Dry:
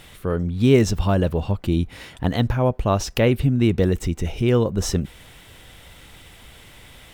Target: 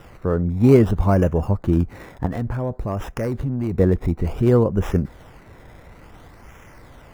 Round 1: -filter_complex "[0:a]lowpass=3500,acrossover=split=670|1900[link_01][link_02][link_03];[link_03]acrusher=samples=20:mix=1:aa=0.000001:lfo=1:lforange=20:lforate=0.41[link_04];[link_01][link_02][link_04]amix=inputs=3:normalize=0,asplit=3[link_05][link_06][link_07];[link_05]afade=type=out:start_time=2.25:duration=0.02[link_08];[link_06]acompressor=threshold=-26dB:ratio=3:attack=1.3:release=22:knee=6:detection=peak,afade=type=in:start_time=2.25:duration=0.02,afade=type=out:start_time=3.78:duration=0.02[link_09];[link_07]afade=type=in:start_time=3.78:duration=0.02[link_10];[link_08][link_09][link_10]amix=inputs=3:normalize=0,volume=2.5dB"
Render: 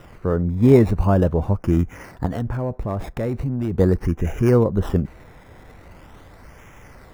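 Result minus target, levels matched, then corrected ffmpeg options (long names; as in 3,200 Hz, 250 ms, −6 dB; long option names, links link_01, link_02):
sample-and-hold swept by an LFO: distortion +16 dB
-filter_complex "[0:a]lowpass=3500,acrossover=split=670|1900[link_01][link_02][link_03];[link_03]acrusher=samples=20:mix=1:aa=0.000001:lfo=1:lforange=20:lforate=0.57[link_04];[link_01][link_02][link_04]amix=inputs=3:normalize=0,asplit=3[link_05][link_06][link_07];[link_05]afade=type=out:start_time=2.25:duration=0.02[link_08];[link_06]acompressor=threshold=-26dB:ratio=3:attack=1.3:release=22:knee=6:detection=peak,afade=type=in:start_time=2.25:duration=0.02,afade=type=out:start_time=3.78:duration=0.02[link_09];[link_07]afade=type=in:start_time=3.78:duration=0.02[link_10];[link_08][link_09][link_10]amix=inputs=3:normalize=0,volume=2.5dB"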